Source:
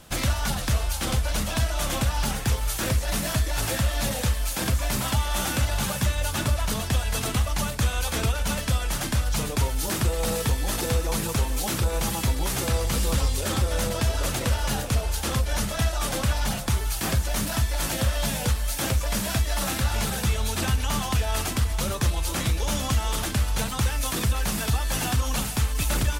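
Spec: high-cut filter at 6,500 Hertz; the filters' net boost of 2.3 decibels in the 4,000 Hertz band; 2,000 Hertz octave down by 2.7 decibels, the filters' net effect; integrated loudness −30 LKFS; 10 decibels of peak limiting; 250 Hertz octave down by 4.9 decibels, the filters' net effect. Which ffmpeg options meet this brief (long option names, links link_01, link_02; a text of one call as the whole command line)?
ffmpeg -i in.wav -af "lowpass=6500,equalizer=frequency=250:width_type=o:gain=-7,equalizer=frequency=2000:width_type=o:gain=-5,equalizer=frequency=4000:width_type=o:gain=5,volume=2.5dB,alimiter=limit=-21dB:level=0:latency=1" out.wav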